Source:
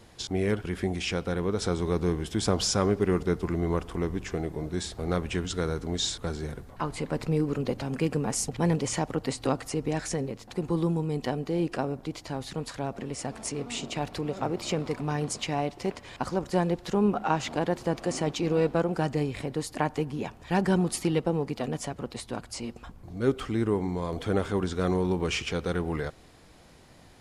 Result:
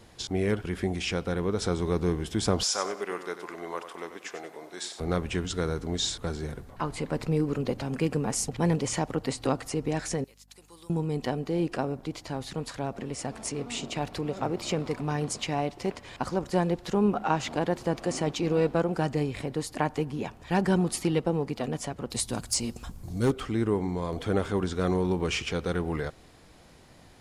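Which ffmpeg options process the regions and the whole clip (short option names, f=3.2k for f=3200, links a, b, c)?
-filter_complex "[0:a]asettb=1/sr,asplit=3[a][b][c];[a]atrim=end=2.634[d];[b]atrim=start=2.63:end=5,asetpts=PTS-STARTPTS,afade=t=in:d=0.004:c=qsin,afade=t=out:st=2.366:d=0.004:c=qsin,highpass=640,aecho=1:1:94|188|282:0.316|0.0917|0.0266,atrim=end_sample=104517[e];[c]atrim=start=4.996[f];[d][e]acrossfade=d=0.004:c1=hsin:c2=qsin[g];[g][f]acrossfade=d=0.004:c1=qsin:c2=hsin,asettb=1/sr,asplit=3[h][i][j];[h]atrim=end=10.244[k];[i]atrim=start=10.24:end=10.9,asetpts=PTS-STARTPTS,afade=t=in:d=0.004:c=qsin,afade=t=out:st=0.656:d=0.004:c=qsin,agate=range=-33dB:threshold=-45dB:ratio=3:release=100:detection=peak,aderivative,aeval=exprs='val(0)+0.000891*(sin(2*PI*50*n/s)+sin(2*PI*2*50*n/s)/2+sin(2*PI*3*50*n/s)/3+sin(2*PI*4*50*n/s)/4+sin(2*PI*5*50*n/s)/5)':c=same[l];[j]atrim=start=10.896[m];[k][l]acrossfade=d=0.004:c1=hsin:c2=qsin[n];[n][m]acrossfade=d=0.004:c1=qsin:c2=hsin,asettb=1/sr,asplit=3[o][p][q];[o]atrim=end=22.104[r];[p]atrim=start=22.1:end=23.31,asetpts=PTS-STARTPTS,afade=t=in:d=0.004:c=qsin,afade=t=out:st=1.206:d=0.004:c=qsin,bass=f=250:g=6,treble=f=4k:g=14,asoftclip=type=hard:threshold=-18dB[s];[q]atrim=start=23.306[t];[r][s]acrossfade=d=0.004:c1=hsin:c2=qsin[u];[u][t]acrossfade=d=0.004:c1=qsin:c2=hsin"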